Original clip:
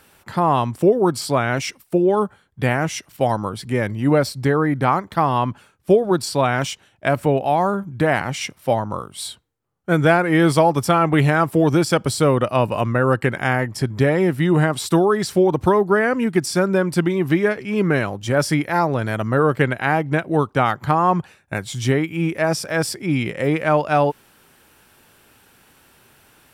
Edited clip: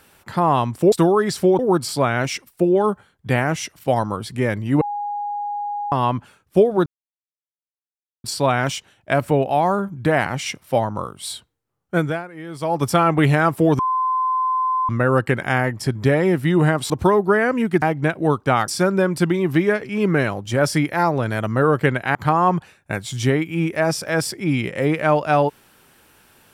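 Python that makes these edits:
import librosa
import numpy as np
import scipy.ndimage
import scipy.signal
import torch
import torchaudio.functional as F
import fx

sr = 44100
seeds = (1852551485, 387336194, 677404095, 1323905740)

y = fx.edit(x, sr, fx.bleep(start_s=4.14, length_s=1.11, hz=823.0, db=-23.0),
    fx.insert_silence(at_s=6.19, length_s=1.38),
    fx.fade_down_up(start_s=9.9, length_s=0.88, db=-19.0, fade_s=0.36, curve='qua'),
    fx.bleep(start_s=11.74, length_s=1.1, hz=1030.0, db=-17.0),
    fx.move(start_s=14.85, length_s=0.67, to_s=0.92),
    fx.move(start_s=19.91, length_s=0.86, to_s=16.44), tone=tone)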